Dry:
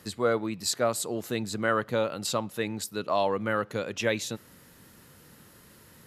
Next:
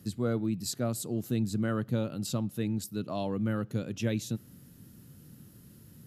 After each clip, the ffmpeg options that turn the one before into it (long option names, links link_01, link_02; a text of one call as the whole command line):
ffmpeg -i in.wav -af "equalizer=frequency=125:width_type=o:width=1:gain=7,equalizer=frequency=250:width_type=o:width=1:gain=4,equalizer=frequency=500:width_type=o:width=1:gain=-7,equalizer=frequency=1000:width_type=o:width=1:gain=-11,equalizer=frequency=2000:width_type=o:width=1:gain=-10,equalizer=frequency=4000:width_type=o:width=1:gain=-5,equalizer=frequency=8000:width_type=o:width=1:gain=-5" out.wav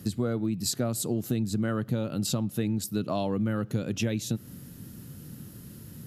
ffmpeg -i in.wav -af "acompressor=threshold=-33dB:ratio=6,volume=8.5dB" out.wav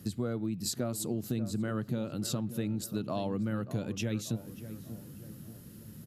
ffmpeg -i in.wav -filter_complex "[0:a]asplit=2[link_01][link_02];[link_02]adelay=586,lowpass=frequency=1400:poles=1,volume=-12dB,asplit=2[link_03][link_04];[link_04]adelay=586,lowpass=frequency=1400:poles=1,volume=0.52,asplit=2[link_05][link_06];[link_06]adelay=586,lowpass=frequency=1400:poles=1,volume=0.52,asplit=2[link_07][link_08];[link_08]adelay=586,lowpass=frequency=1400:poles=1,volume=0.52,asplit=2[link_09][link_10];[link_10]adelay=586,lowpass=frequency=1400:poles=1,volume=0.52[link_11];[link_01][link_03][link_05][link_07][link_09][link_11]amix=inputs=6:normalize=0,volume=-5dB" out.wav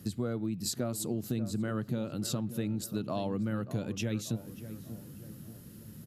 ffmpeg -i in.wav -af anull out.wav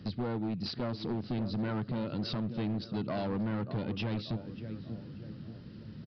ffmpeg -i in.wav -af "volume=32dB,asoftclip=hard,volume=-32dB,aresample=11025,aresample=44100,volume=2.5dB" out.wav